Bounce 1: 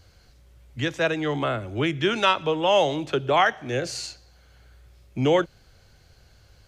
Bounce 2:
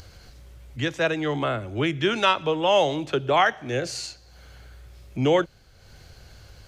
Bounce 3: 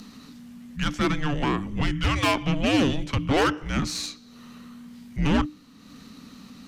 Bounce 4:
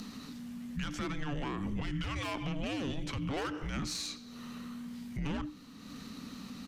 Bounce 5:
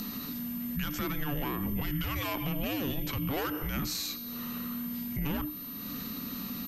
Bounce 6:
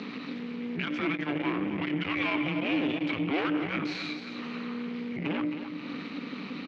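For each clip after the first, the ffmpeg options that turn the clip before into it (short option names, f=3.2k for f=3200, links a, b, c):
-af "acompressor=mode=upward:threshold=-38dB:ratio=2.5"
-af "aeval=exprs='(tanh(12.6*val(0)+0.55)-tanh(0.55))/12.6':c=same,afreqshift=-300,volume=4.5dB"
-af "acompressor=threshold=-27dB:ratio=3,alimiter=level_in=4dB:limit=-24dB:level=0:latency=1:release=64,volume=-4dB,aecho=1:1:88:0.0944"
-filter_complex "[0:a]asplit=2[a][b];[b]alimiter=level_in=14dB:limit=-24dB:level=0:latency=1:release=175,volume=-14dB,volume=1.5dB[c];[a][c]amix=inputs=2:normalize=0,acrusher=bits=10:mix=0:aa=0.000001,aeval=exprs='val(0)+0.01*sin(2*PI*13000*n/s)':c=same"
-af "aecho=1:1:267|534|801|1068|1335:0.316|0.142|0.064|0.0288|0.013,aeval=exprs='(tanh(39.8*val(0)+0.8)-tanh(0.8))/39.8':c=same,highpass=f=130:w=0.5412,highpass=f=130:w=1.3066,equalizer=f=130:t=q:w=4:g=-9,equalizer=f=220:t=q:w=4:g=-5,equalizer=f=310:t=q:w=4:g=7,equalizer=f=2.3k:t=q:w=4:g=9,lowpass=f=3.6k:w=0.5412,lowpass=f=3.6k:w=1.3066,volume=7dB"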